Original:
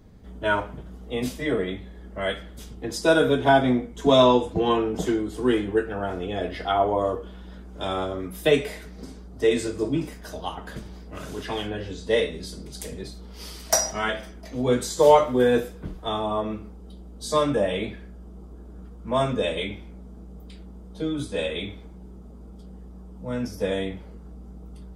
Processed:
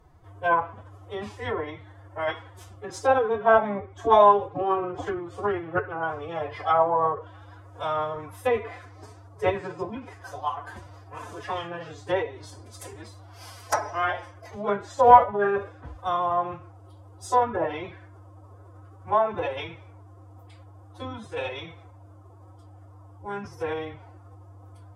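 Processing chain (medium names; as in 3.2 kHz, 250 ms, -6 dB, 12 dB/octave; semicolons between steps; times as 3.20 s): low-pass that closes with the level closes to 1.9 kHz, closed at -19 dBFS; formant-preserving pitch shift +8.5 st; graphic EQ 125/250/1000/4000 Hz -4/-10/+10/-6 dB; trim -2.5 dB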